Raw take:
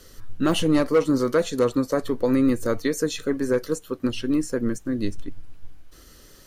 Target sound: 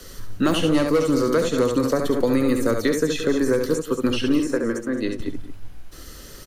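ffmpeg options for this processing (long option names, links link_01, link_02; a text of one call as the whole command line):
ffmpeg -i in.wav -filter_complex "[0:a]asettb=1/sr,asplit=3[link_01][link_02][link_03];[link_01]atrim=end=4.394[link_04];[link_02]atrim=start=4.39:end=5.2,asetpts=PTS-STARTPTS,afade=type=in:duration=0.004:curve=qsin,afade=type=out:start_time=0.806:duration=0.004:curve=qsin,bass=frequency=250:gain=-15,treble=frequency=4000:gain=-9[link_05];[link_03]atrim=start=5.196[link_06];[link_04][link_05]acrossfade=duration=0.004:curve1=hsin:curve2=qsin[link_07];[link_07][link_06]acrossfade=duration=0.004:curve1=qsin:curve2=hsin,asplit=2[link_08][link_09];[link_09]aecho=0:1:69|175|215:0.473|0.15|0.2[link_10];[link_08][link_10]amix=inputs=2:normalize=0,acrossover=split=87|320|3400[link_11][link_12][link_13][link_14];[link_11]acompressor=threshold=-34dB:ratio=4[link_15];[link_12]acompressor=threshold=-33dB:ratio=4[link_16];[link_13]acompressor=threshold=-28dB:ratio=4[link_17];[link_14]acompressor=threshold=-43dB:ratio=4[link_18];[link_15][link_16][link_17][link_18]amix=inputs=4:normalize=0,volume=7.5dB" out.wav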